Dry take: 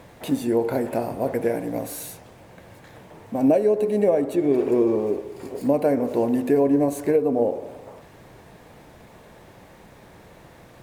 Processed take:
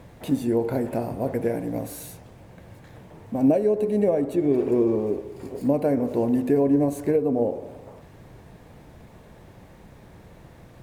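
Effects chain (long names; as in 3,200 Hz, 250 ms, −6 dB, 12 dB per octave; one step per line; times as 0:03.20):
low-shelf EQ 240 Hz +10 dB
level −4.5 dB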